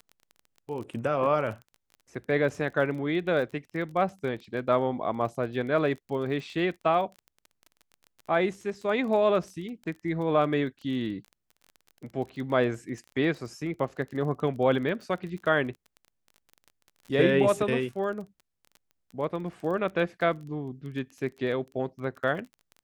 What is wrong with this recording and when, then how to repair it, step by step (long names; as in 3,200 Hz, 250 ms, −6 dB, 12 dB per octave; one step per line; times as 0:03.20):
surface crackle 22 per second −37 dBFS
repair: click removal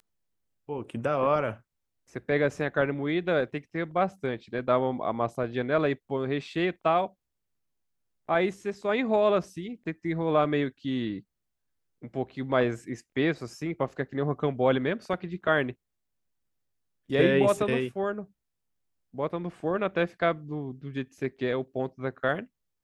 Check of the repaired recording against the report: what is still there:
none of them is left